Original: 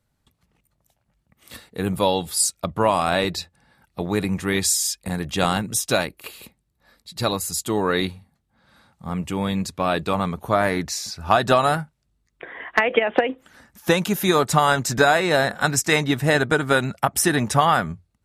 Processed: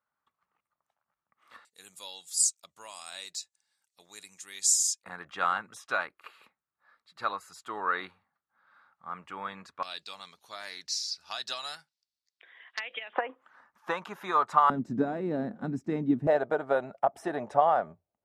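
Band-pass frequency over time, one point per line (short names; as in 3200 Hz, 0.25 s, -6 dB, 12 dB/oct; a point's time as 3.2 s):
band-pass, Q 3
1200 Hz
from 1.65 s 6900 Hz
from 5.03 s 1300 Hz
from 9.83 s 4800 Hz
from 13.13 s 1100 Hz
from 14.7 s 250 Hz
from 16.27 s 650 Hz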